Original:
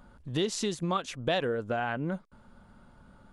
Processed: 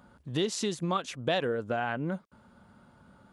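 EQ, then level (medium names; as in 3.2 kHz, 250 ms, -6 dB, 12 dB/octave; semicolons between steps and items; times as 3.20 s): high-pass 82 Hz; 0.0 dB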